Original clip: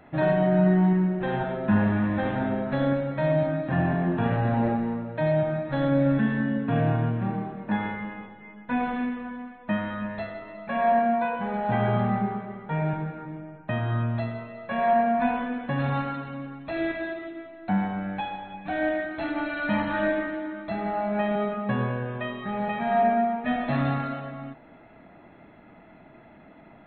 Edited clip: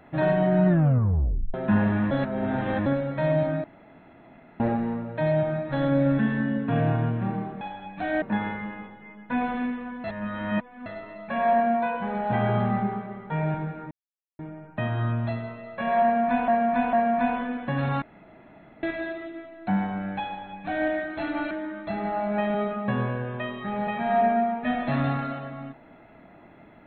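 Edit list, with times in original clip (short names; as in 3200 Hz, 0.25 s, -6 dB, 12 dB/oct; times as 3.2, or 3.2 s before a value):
0.68 tape stop 0.86 s
2.11–2.86 reverse
3.64–4.6 room tone
9.43–10.25 reverse
13.3 insert silence 0.48 s
14.94–15.39 loop, 3 plays
16.03–16.84 room tone
18.29–18.9 copy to 7.61
19.52–20.32 cut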